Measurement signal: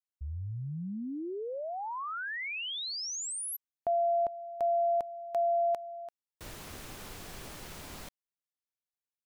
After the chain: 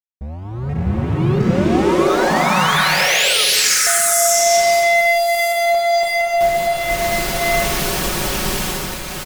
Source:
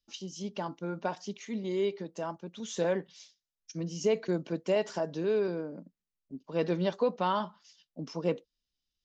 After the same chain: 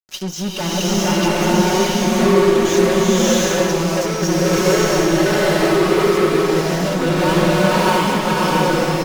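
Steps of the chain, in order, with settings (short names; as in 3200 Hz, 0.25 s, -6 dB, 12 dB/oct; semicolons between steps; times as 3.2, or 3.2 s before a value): reverse delay 0.69 s, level -3 dB; fuzz box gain 42 dB, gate -50 dBFS; comb 5.4 ms, depth 49%; bloom reverb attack 0.7 s, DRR -8 dB; gain -9.5 dB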